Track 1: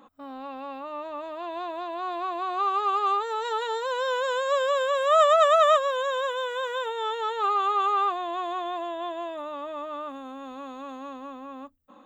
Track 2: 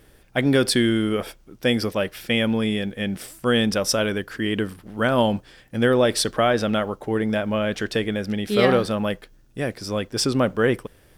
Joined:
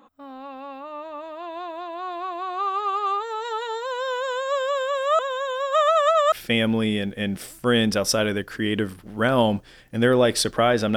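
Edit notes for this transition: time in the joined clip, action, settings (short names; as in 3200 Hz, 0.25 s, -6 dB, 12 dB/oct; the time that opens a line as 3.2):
track 1
5.19–6.32 reverse
6.32 switch to track 2 from 2.12 s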